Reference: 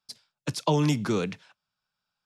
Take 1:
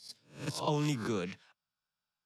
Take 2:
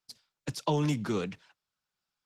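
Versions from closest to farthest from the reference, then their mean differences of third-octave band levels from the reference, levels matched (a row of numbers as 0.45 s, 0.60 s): 2, 1; 1.5 dB, 3.0 dB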